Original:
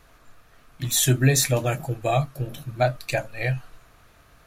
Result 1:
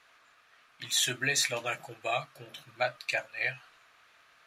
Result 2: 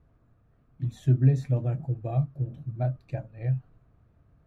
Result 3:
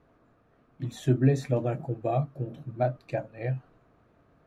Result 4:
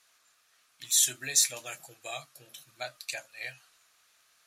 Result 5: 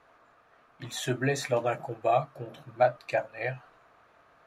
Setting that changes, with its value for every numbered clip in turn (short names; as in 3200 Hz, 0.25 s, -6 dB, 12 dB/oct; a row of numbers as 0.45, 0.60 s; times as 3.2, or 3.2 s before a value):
band-pass, frequency: 2500, 110, 280, 6800, 830 Hz